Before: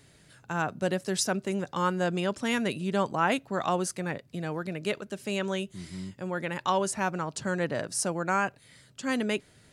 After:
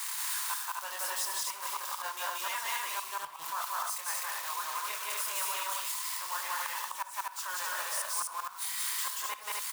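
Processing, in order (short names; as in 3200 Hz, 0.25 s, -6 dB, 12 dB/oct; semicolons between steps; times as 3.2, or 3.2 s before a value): switching spikes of -19 dBFS; in parallel at +2.5 dB: limiter -23 dBFS, peak gain reduction 10.5 dB; on the sum: ladder high-pass 960 Hz, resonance 80%; wrapped overs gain 15.5 dB; chorus voices 4, 1.2 Hz, delay 25 ms, depth 3 ms; flipped gate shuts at -23 dBFS, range -24 dB; loudspeakers at several distances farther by 62 m 0 dB, 87 m -2 dB; on a send at -14 dB: reverb RT60 0.45 s, pre-delay 54 ms; on the sum: three-band squash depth 40%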